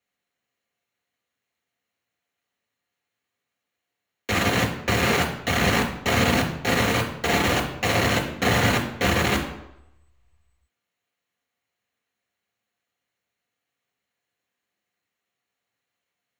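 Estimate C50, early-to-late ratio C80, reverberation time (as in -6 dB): 8.5 dB, 11.0 dB, 0.85 s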